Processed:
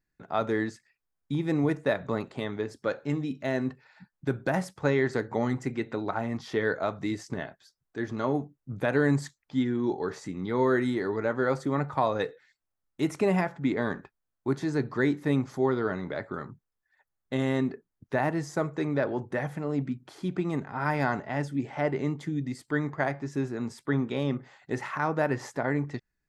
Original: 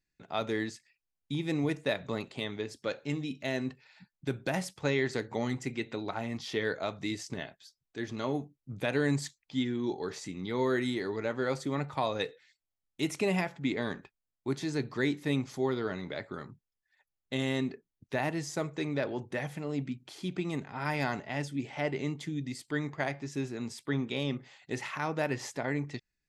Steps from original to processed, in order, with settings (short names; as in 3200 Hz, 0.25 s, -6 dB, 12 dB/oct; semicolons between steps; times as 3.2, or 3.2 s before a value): resonant high shelf 2000 Hz -7.5 dB, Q 1.5; gain +4.5 dB